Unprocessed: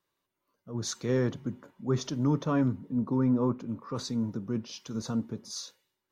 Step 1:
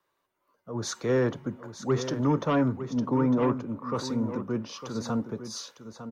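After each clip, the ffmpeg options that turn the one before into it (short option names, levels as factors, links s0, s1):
-filter_complex "[0:a]acrossover=split=230|400|1900[s0][s1][s2][s3];[s2]aeval=exprs='0.0708*sin(PI/2*1.78*val(0)/0.0708)':c=same[s4];[s0][s1][s4][s3]amix=inputs=4:normalize=0,aecho=1:1:904:0.282"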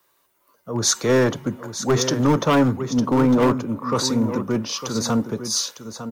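-af "aeval=exprs='clip(val(0),-1,0.075)':c=same,crystalizer=i=2.5:c=0,volume=2.51"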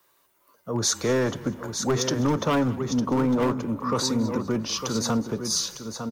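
-filter_complex "[0:a]acompressor=threshold=0.0631:ratio=2,asplit=4[s0][s1][s2][s3];[s1]adelay=201,afreqshift=-31,volume=0.1[s4];[s2]adelay=402,afreqshift=-62,volume=0.0462[s5];[s3]adelay=603,afreqshift=-93,volume=0.0211[s6];[s0][s4][s5][s6]amix=inputs=4:normalize=0"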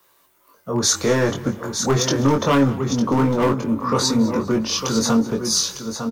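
-filter_complex "[0:a]asplit=2[s0][s1];[s1]adelay=22,volume=0.631[s2];[s0][s2]amix=inputs=2:normalize=0,volume=1.68"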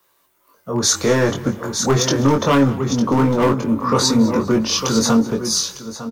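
-af "dynaudnorm=f=120:g=11:m=3.76,volume=0.708"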